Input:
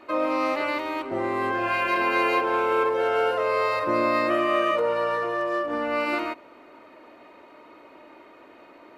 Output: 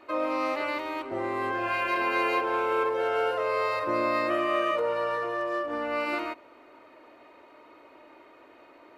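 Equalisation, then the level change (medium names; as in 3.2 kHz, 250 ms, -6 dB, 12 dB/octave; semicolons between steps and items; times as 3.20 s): peaking EQ 200 Hz -6.5 dB 0.56 oct; -3.5 dB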